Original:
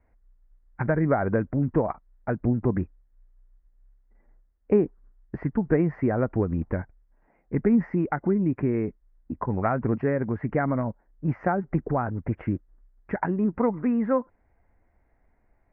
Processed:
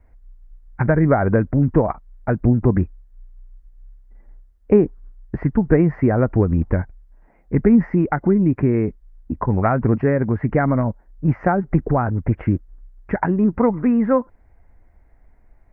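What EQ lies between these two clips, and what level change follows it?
low shelf 84 Hz +10 dB; +6.0 dB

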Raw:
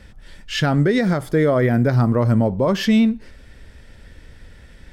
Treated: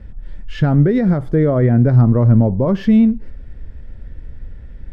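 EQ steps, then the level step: tilt -3 dB/oct; high shelf 3800 Hz -8.5 dB; -2.5 dB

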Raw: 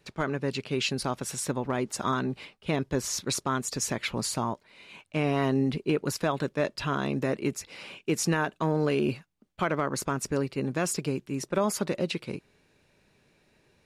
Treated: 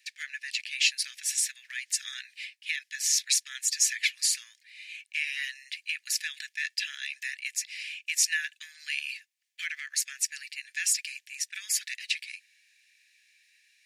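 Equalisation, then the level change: rippled Chebyshev high-pass 1700 Hz, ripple 3 dB; +7.5 dB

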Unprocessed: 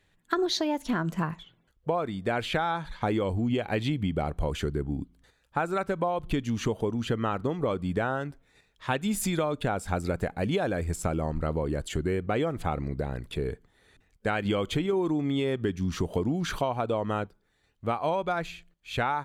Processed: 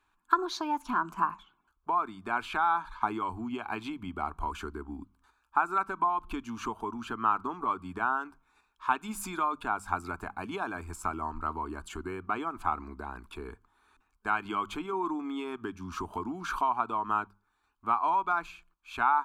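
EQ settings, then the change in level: band shelf 1500 Hz +16 dB; notches 50/100/150/200 Hz; fixed phaser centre 520 Hz, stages 6; -6.5 dB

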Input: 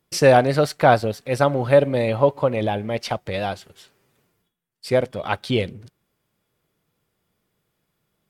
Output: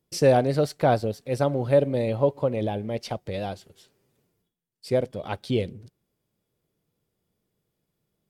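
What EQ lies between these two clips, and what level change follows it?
EQ curve 450 Hz 0 dB, 1300 Hz -9 dB, 2400 Hz -7 dB, 5000 Hz -3 dB; -3.0 dB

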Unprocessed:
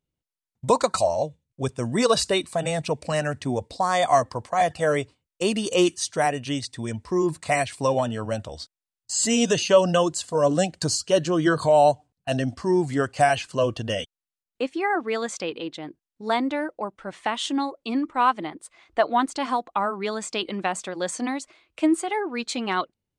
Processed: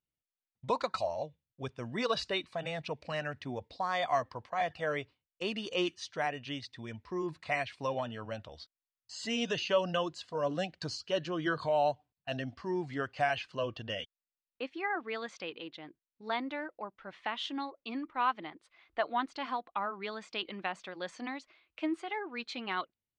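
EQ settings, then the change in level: air absorption 290 m; tilt shelf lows -7 dB, about 1400 Hz; -6.5 dB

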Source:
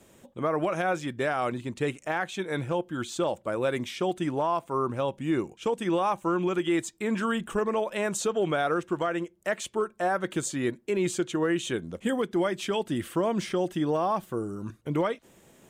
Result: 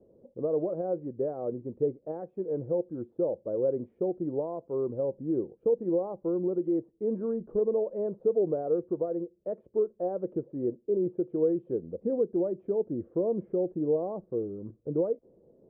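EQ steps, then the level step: ladder low-pass 550 Hz, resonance 60%; +4.0 dB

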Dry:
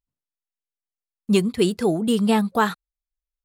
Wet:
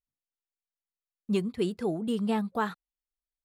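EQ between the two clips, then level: high shelf 3800 Hz -8.5 dB; -9.0 dB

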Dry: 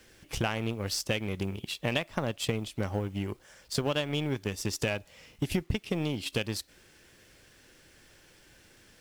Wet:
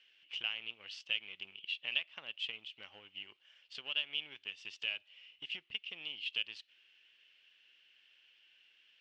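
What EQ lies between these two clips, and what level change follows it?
band-pass 2900 Hz, Q 7.8; air absorption 120 m; +6.5 dB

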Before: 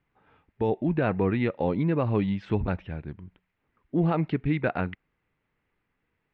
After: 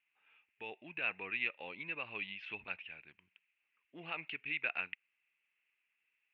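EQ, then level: band-pass 2600 Hz, Q 7.7; +9.0 dB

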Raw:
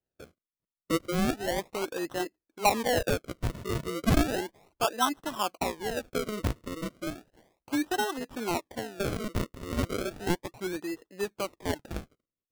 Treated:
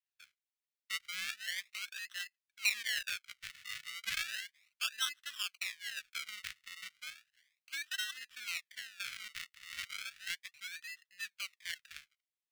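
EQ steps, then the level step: inverse Chebyshev high-pass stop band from 940 Hz, stop band 40 dB; high shelf 5000 Hz -12 dB; +3.5 dB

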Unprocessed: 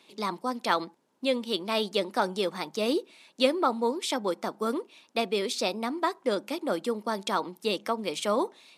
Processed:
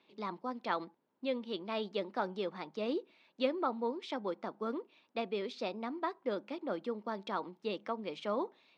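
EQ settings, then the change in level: air absorption 240 m; -7.5 dB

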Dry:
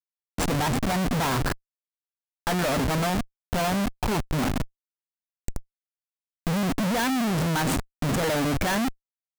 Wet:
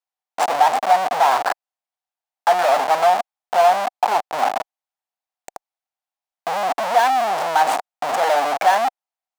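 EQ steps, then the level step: resonant high-pass 750 Hz, resonance Q 4.9; high shelf 6900 Hz -8 dB; +4.0 dB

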